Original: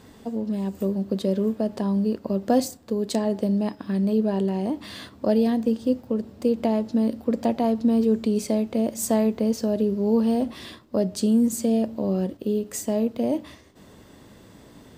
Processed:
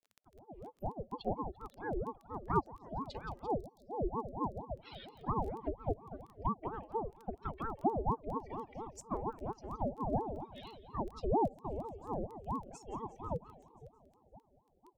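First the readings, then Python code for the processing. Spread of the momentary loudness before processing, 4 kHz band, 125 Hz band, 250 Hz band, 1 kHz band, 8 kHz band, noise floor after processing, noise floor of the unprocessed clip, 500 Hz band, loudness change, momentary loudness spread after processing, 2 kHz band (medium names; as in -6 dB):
7 LU, -18.5 dB, -11.0 dB, -21.0 dB, -2.5 dB, -26.5 dB, -71 dBFS, -50 dBFS, -15.5 dB, -15.5 dB, 12 LU, -11.5 dB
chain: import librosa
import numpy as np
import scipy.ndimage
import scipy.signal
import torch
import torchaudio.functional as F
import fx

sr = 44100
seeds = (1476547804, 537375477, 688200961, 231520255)

p1 = fx.bin_expand(x, sr, power=3.0)
p2 = p1 + fx.echo_split(p1, sr, split_hz=440.0, low_ms=508, high_ms=171, feedback_pct=52, wet_db=-16, dry=0)
p3 = fx.rotary(p2, sr, hz=6.3)
p4 = fx.low_shelf(p3, sr, hz=210.0, db=-8.0)
p5 = fx.env_lowpass_down(p4, sr, base_hz=570.0, full_db=-31.0)
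p6 = fx.dmg_crackle(p5, sr, seeds[0], per_s=11.0, level_db=-45.0)
p7 = fx.spec_erase(p6, sr, start_s=3.5, length_s=1.25, low_hz=530.0, high_hz=3700.0)
p8 = scipy.signal.sosfilt(scipy.signal.butter(2, 71.0, 'highpass', fs=sr, output='sos'), p7)
p9 = fx.peak_eq(p8, sr, hz=100.0, db=-13.5, octaves=0.71)
p10 = fx.ring_lfo(p9, sr, carrier_hz=420.0, swing_pct=65, hz=4.3)
y = p10 * 10.0 ** (2.0 / 20.0)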